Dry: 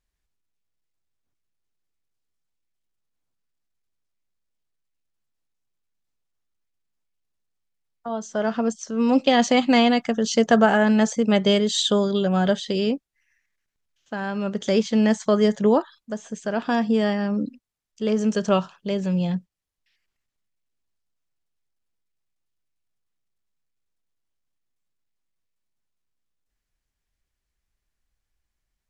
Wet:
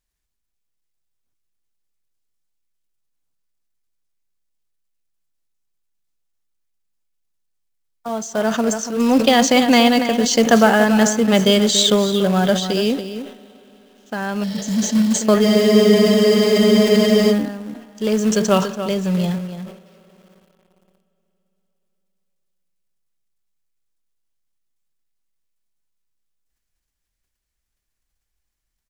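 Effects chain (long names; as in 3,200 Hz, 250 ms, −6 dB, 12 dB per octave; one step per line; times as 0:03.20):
high-shelf EQ 4,700 Hz +7.5 dB
slap from a distant wall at 49 metres, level −10 dB
on a send at −19.5 dB: convolution reverb RT60 4.2 s, pre-delay 58 ms
on the sum: healed spectral selection 0:14.46–0:15.12, 300–5,600 Hz after
in parallel at −3.5 dB: log-companded quantiser 4 bits
on the sum: frozen spectrum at 0:15.47, 1.85 s
level that may fall only so fast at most 100 dB per second
level −1 dB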